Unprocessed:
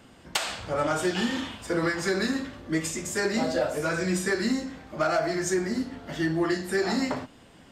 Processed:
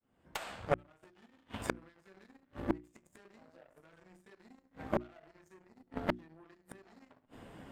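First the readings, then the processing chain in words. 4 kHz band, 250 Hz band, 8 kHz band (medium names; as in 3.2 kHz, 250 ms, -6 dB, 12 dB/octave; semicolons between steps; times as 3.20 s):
-20.0 dB, -16.5 dB, -23.5 dB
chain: fade-in on the opening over 1.77 s; peaking EQ 5.5 kHz -12.5 dB 2 oct; in parallel at 0 dB: compression 6:1, threshold -34 dBFS, peak gain reduction 12 dB; on the sum: peak limiter -19 dBFS, peak gain reduction 4.5 dB; reverse; upward compressor, threshold -48 dBFS; reverse; Chebyshev shaper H 3 -11 dB, 4 -30 dB, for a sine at -19 dBFS; inverted gate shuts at -26 dBFS, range -42 dB; hum notches 60/120/180/240/300/360 Hz; trim +12 dB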